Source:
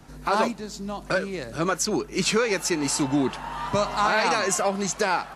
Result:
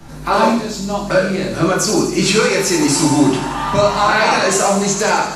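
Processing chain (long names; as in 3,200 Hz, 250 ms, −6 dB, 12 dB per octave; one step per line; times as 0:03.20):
in parallel at −2 dB: brickwall limiter −22 dBFS, peak gain reduction 11.5 dB
on the sum: delay with a high-pass on its return 83 ms, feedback 68%, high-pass 4,200 Hz, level −6 dB
rectangular room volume 110 cubic metres, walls mixed, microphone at 1.2 metres
level +1.5 dB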